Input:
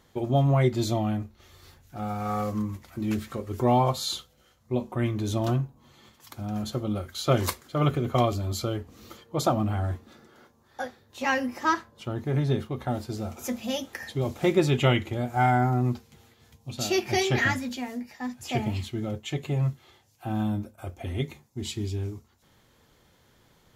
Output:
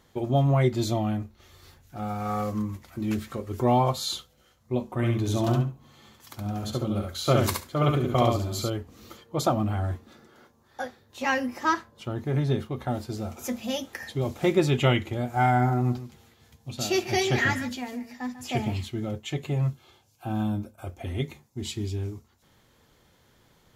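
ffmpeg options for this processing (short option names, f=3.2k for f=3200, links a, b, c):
-filter_complex "[0:a]asettb=1/sr,asplit=3[a][b][c];[a]atrim=end=4.864[d];[b]atrim=start=4.86:end=8.7,asetpts=PTS-STARTPTS,afade=t=in:d=0.004:c=qsin,afade=t=out:st=3.836:d=0.004:c=qsin,aecho=1:1:69|138|207:0.668|0.107|0.0171,atrim=end_sample=169344[e];[c]atrim=start=8.696[f];[d][e]acrossfade=d=0.004:c1=hsin:c2=qsin[g];[g][f]acrossfade=d=0.004:c1=qsin:c2=hsin,asettb=1/sr,asplit=3[h][i][j];[h]atrim=end=15.244[k];[i]atrim=start=15.24:end=18.76,asetpts=PTS-STARTPTS,afade=t=in:d=0.004:c=qsin,afade=t=out:st=3.516:d=0.004:c=qsin,aecho=1:1:145:0.211,atrim=end_sample=155232[l];[j]atrim=start=18.756[m];[k][l]acrossfade=d=0.004:c1=hsin:c2=qsin[n];[n][m]acrossfade=d=0.004:c1=qsin:c2=hsin,asettb=1/sr,asplit=3[o][p][q];[o]atrim=end=19.704[r];[p]atrim=start=19.7:end=20.88,asetpts=PTS-STARTPTS,afade=t=in:d=0.004:c=qsin,afade=t=out:st=1.176:d=0.004:c=qsin,asuperstop=centerf=1900:order=8:qfactor=5.9[s];[q]atrim=start=20.876[t];[r][s]acrossfade=d=0.004:c1=hsin:c2=qsin[u];[u][t]acrossfade=d=0.004:c1=qsin:c2=hsin"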